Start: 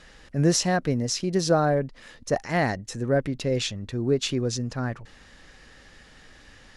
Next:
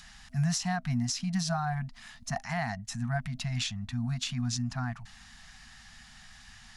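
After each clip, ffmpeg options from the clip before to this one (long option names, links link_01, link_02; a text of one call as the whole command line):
ffmpeg -i in.wav -filter_complex "[0:a]afftfilt=real='re*(1-between(b*sr/4096,250,650))':imag='im*(1-between(b*sr/4096,250,650))':win_size=4096:overlap=0.75,acrossover=split=520|4000[link_01][link_02][link_03];[link_03]acompressor=mode=upward:threshold=-49dB:ratio=2.5[link_04];[link_01][link_02][link_04]amix=inputs=3:normalize=0,alimiter=limit=-19.5dB:level=0:latency=1:release=153,volume=-2dB" out.wav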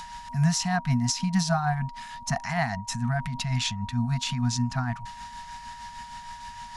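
ffmpeg -i in.wav -af "aeval=exprs='val(0)+0.00631*sin(2*PI*950*n/s)':channel_layout=same,acontrast=83,tremolo=f=6.5:d=0.43" out.wav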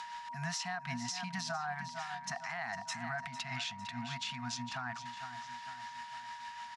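ffmpeg -i in.wav -af "bandpass=frequency=1800:width_type=q:width=0.6:csg=0,aecho=1:1:453|906|1359|1812|2265:0.224|0.105|0.0495|0.0232|0.0109,alimiter=level_in=3dB:limit=-24dB:level=0:latency=1:release=81,volume=-3dB,volume=-1.5dB" out.wav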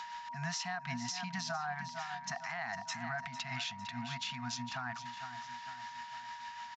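ffmpeg -i in.wav -af "aresample=16000,aresample=44100" out.wav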